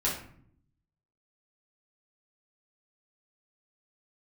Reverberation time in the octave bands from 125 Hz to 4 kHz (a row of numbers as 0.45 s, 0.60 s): 1.1 s, 1.0 s, 0.65 s, 0.55 s, 0.50 s, 0.35 s